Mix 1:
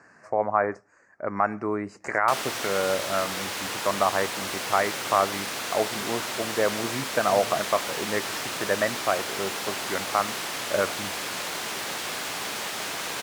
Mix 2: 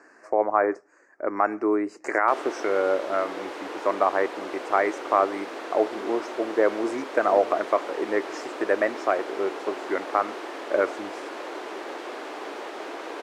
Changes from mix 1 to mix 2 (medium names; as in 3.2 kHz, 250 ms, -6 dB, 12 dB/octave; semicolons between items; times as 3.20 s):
background: add band-pass filter 510 Hz, Q 0.6; master: add resonant low shelf 220 Hz -13 dB, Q 3